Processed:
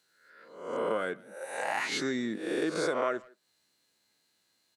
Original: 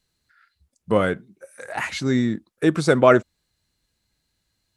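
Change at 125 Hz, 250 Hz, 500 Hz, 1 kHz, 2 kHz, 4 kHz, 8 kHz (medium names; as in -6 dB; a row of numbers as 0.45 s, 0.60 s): -22.0 dB, -12.5 dB, -11.5 dB, -9.5 dB, -7.5 dB, -5.0 dB, -4.5 dB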